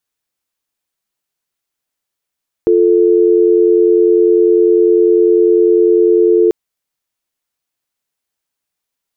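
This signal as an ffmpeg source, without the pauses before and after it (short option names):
-f lavfi -i "aevalsrc='0.335*(sin(2*PI*350*t)+sin(2*PI*440*t))':d=3.84:s=44100"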